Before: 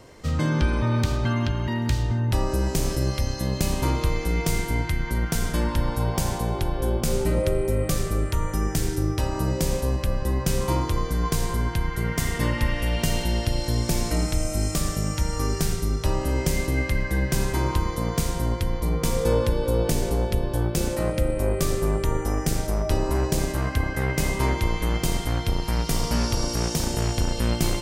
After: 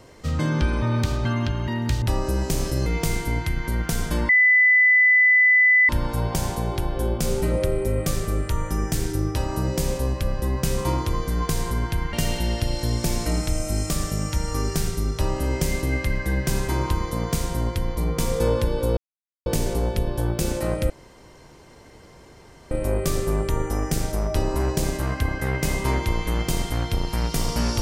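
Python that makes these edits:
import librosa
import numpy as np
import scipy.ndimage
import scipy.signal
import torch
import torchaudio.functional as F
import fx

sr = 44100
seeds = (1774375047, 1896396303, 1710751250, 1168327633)

y = fx.edit(x, sr, fx.cut(start_s=2.02, length_s=0.25),
    fx.cut(start_s=3.11, length_s=1.18),
    fx.insert_tone(at_s=5.72, length_s=1.6, hz=2000.0, db=-12.5),
    fx.cut(start_s=11.96, length_s=1.02),
    fx.insert_silence(at_s=19.82, length_s=0.49),
    fx.insert_room_tone(at_s=21.26, length_s=1.81), tone=tone)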